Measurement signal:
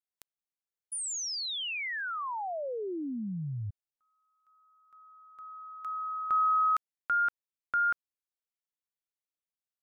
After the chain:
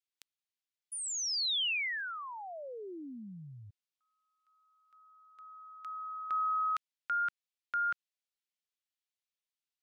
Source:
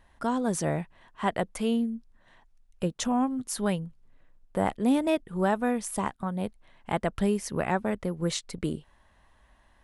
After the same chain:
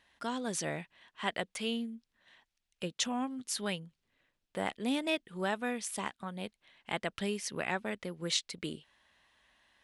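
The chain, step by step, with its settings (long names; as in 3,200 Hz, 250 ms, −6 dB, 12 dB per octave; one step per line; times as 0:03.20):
meter weighting curve D
level −8 dB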